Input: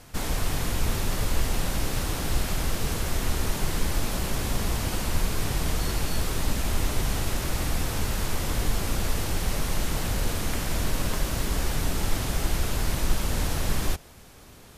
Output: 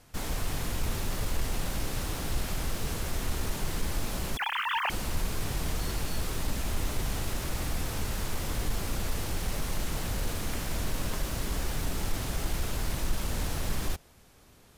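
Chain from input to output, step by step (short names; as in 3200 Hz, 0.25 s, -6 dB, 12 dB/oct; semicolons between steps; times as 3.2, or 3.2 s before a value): 4.37–4.9 sine-wave speech; in parallel at -5 dB: bit-crush 6-bit; on the sum: soft clip -8 dBFS, distortion -27 dB; gain -8.5 dB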